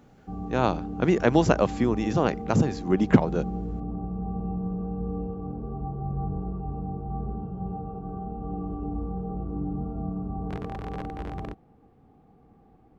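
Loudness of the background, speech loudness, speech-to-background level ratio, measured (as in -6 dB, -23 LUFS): -34.0 LUFS, -24.5 LUFS, 9.5 dB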